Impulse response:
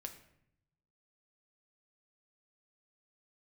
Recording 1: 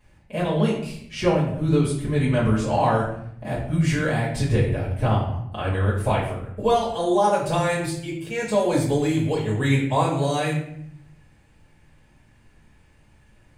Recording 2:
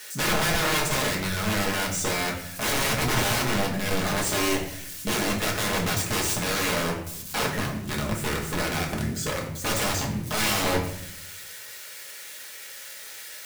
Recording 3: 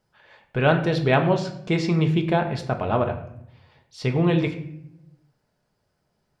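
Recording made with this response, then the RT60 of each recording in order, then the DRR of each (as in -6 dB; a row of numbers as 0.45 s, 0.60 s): 3; 0.70 s, 0.70 s, 0.70 s; -10.0 dB, -2.5 dB, 4.0 dB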